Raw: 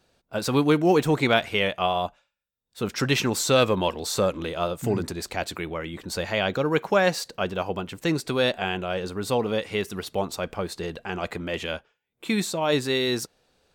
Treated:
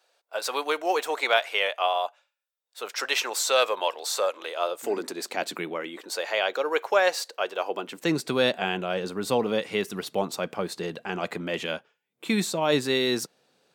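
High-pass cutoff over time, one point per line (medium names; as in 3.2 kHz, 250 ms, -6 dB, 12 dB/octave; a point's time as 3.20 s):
high-pass 24 dB/octave
4.45 s 520 Hz
5.61 s 180 Hz
6.20 s 430 Hz
7.56 s 430 Hz
8.22 s 140 Hz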